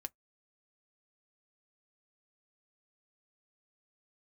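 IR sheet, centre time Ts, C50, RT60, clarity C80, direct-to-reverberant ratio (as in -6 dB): 1 ms, 39.5 dB, 0.10 s, 54.5 dB, 9.5 dB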